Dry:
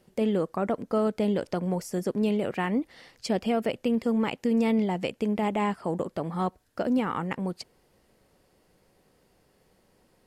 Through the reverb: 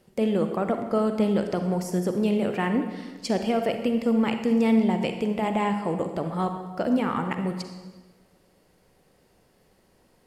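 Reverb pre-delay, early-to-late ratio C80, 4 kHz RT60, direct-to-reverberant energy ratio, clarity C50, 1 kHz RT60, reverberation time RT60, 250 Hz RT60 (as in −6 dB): 36 ms, 8.5 dB, 1.1 s, 6.0 dB, 6.5 dB, 1.3 s, 1.3 s, 1.4 s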